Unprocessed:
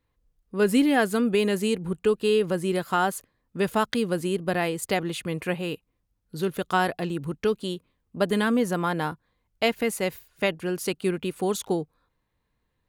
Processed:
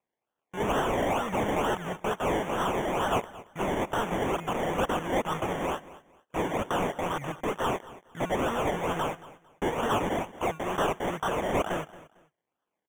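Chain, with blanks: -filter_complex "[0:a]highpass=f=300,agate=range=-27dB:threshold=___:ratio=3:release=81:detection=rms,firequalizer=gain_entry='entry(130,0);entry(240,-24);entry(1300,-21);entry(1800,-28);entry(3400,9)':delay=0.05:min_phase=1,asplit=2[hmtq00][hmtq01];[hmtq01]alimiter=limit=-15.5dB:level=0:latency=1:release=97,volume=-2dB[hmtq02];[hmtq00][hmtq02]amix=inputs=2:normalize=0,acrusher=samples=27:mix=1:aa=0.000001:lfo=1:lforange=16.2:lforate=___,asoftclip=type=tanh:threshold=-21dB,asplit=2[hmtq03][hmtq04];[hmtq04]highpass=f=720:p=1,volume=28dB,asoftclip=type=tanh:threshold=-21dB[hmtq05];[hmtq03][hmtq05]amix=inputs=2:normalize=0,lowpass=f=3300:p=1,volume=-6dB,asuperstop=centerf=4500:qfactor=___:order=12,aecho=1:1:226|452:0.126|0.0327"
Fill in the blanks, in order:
-47dB, 2.2, 2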